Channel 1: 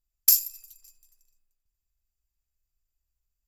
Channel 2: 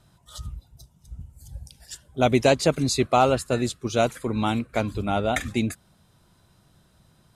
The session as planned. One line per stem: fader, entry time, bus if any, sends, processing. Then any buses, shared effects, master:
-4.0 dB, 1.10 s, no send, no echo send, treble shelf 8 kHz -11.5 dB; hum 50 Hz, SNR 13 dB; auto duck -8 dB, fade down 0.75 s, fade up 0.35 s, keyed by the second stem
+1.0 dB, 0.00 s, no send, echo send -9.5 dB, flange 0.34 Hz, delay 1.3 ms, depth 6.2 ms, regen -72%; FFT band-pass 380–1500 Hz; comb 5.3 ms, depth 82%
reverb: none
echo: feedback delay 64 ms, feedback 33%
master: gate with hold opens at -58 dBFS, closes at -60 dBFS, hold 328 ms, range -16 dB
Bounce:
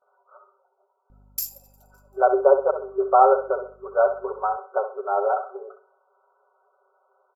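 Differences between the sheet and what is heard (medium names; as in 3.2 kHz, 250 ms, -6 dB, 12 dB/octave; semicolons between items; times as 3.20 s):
stem 1: missing treble shelf 8 kHz -11.5 dB; stem 2: missing flange 0.34 Hz, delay 1.3 ms, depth 6.2 ms, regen -72%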